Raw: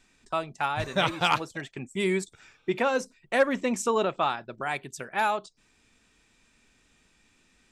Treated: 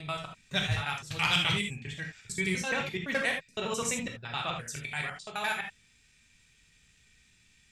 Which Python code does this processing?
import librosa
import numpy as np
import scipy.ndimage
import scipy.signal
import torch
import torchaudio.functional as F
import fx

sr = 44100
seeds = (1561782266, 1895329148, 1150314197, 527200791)

y = fx.block_reorder(x, sr, ms=85.0, group=6)
y = fx.band_shelf(y, sr, hz=540.0, db=-11.5, octaves=3.0)
y = fx.rev_gated(y, sr, seeds[0], gate_ms=100, shape='flat', drr_db=1.0)